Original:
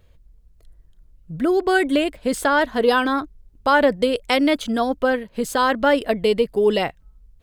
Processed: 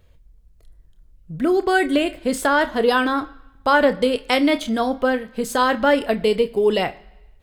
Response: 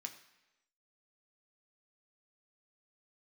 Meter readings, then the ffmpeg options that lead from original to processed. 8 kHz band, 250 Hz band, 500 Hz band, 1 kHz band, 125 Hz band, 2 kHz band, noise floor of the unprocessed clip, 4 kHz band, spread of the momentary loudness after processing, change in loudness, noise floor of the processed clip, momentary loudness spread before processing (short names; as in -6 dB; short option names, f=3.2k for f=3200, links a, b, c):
+0.5 dB, +0.5 dB, 0.0 dB, +0.5 dB, 0.0 dB, +0.5 dB, -54 dBFS, +0.5 dB, 8 LU, 0.0 dB, -53 dBFS, 7 LU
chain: -filter_complex "[0:a]asplit=2[a][b];[1:a]atrim=start_sample=2205,adelay=28[c];[b][c]afir=irnorm=-1:irlink=0,volume=-6.5dB[d];[a][d]amix=inputs=2:normalize=0"